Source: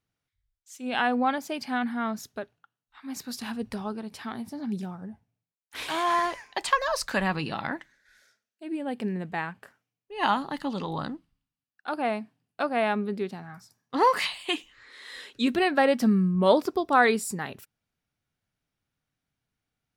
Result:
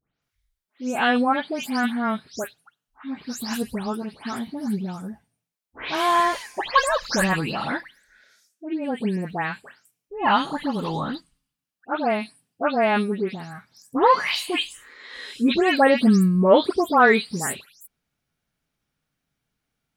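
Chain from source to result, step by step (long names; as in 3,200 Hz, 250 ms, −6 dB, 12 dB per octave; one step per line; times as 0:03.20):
every frequency bin delayed by itself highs late, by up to 219 ms
level +5.5 dB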